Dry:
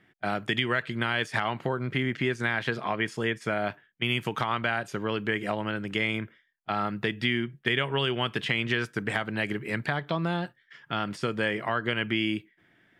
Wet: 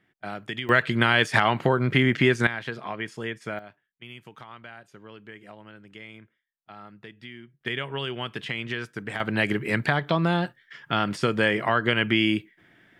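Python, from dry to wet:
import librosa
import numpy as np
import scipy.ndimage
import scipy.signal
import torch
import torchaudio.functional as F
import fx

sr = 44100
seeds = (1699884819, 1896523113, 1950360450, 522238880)

y = fx.gain(x, sr, db=fx.steps((0.0, -5.5), (0.69, 7.5), (2.47, -4.0), (3.59, -16.0), (7.61, -4.0), (9.2, 5.5)))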